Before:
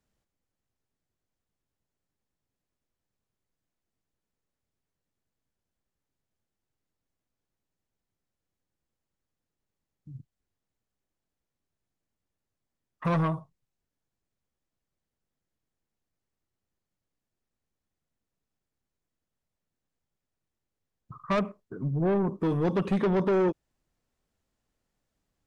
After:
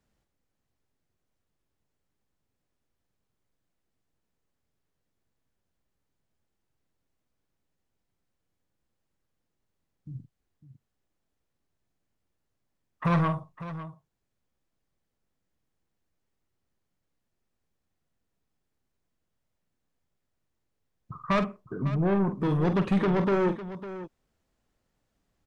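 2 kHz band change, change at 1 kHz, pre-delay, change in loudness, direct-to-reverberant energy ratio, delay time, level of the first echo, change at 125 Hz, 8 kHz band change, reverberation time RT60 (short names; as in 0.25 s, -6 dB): +3.5 dB, +2.5 dB, none, +0.5 dB, none, 46 ms, -10.0 dB, +2.5 dB, n/a, none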